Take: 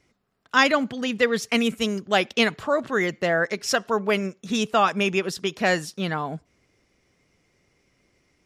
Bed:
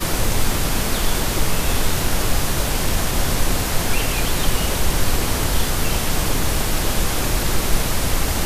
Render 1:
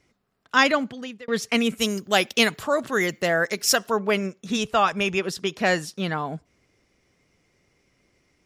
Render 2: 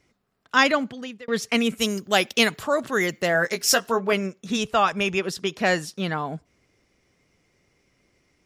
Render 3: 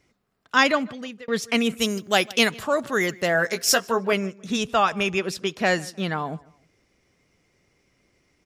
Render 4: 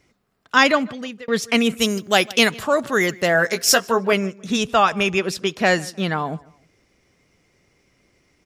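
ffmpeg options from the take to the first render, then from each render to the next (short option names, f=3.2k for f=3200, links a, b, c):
-filter_complex "[0:a]asettb=1/sr,asplit=3[a][b][c];[a]atrim=end=1.794[d];[b]atrim=start=1.79:end=3.92,asetpts=PTS-STARTPTS,afade=t=in:d=0.004:c=qsin,afade=t=out:st=2.126:d=0.004:c=qsin,aemphasis=mode=production:type=50fm[e];[c]atrim=start=3.916[f];[d][e]acrossfade=d=0.004:c1=hsin:c2=qsin[g];[g][f]acrossfade=d=0.004:c1=qsin:c2=hsin,asplit=3[h][i][j];[h]afade=t=out:st=4.56:d=0.02[k];[i]asubboost=boost=7:cutoff=85,afade=t=in:st=4.56:d=0.02,afade=t=out:st=5.18:d=0.02[l];[j]afade=t=in:st=5.18:d=0.02[m];[k][l][m]amix=inputs=3:normalize=0,asplit=2[n][o];[n]atrim=end=1.28,asetpts=PTS-STARTPTS,afade=t=out:st=0.7:d=0.58[p];[o]atrim=start=1.28,asetpts=PTS-STARTPTS,afade=t=in:d=0.004:c=hsin[q];[p][q]concat=n=2:v=0:a=1"
-filter_complex "[0:a]asettb=1/sr,asplit=3[a][b][c];[a]atrim=end=3.334[d];[b]atrim=start=3.33:end=4.13,asetpts=PTS-STARTPTS,afade=t=in:d=0.004:c=qsin,afade=t=out:st=0.796:d=0.004:c=qsin,asplit=2[e][f];[f]adelay=17,volume=-7dB[g];[e][g]amix=inputs=2:normalize=0,atrim=end_sample=35280[h];[c]atrim=start=4.126[i];[d][h]acrossfade=d=0.004:c1=hsin:c2=qsin[j];[j][i]acrossfade=d=0.004:c1=qsin:c2=hsin"
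-filter_complex "[0:a]asplit=2[a][b];[b]adelay=153,lowpass=f=3.8k:p=1,volume=-23dB,asplit=2[c][d];[d]adelay=153,lowpass=f=3.8k:p=1,volume=0.32[e];[a][c][e]amix=inputs=3:normalize=0"
-af "volume=4dB,alimiter=limit=-2dB:level=0:latency=1"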